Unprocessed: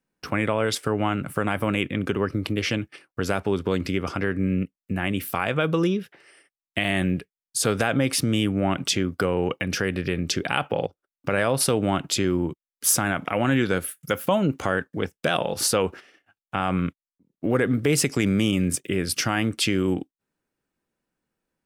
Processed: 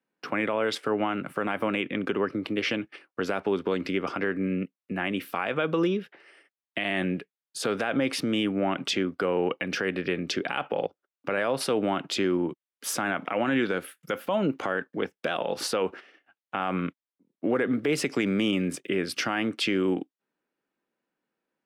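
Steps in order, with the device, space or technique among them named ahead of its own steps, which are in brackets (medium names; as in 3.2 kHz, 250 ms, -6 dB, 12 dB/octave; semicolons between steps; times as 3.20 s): DJ mixer with the lows and highs turned down (three-band isolator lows -22 dB, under 190 Hz, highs -14 dB, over 4.3 kHz; peak limiter -16 dBFS, peak gain reduction 7.5 dB)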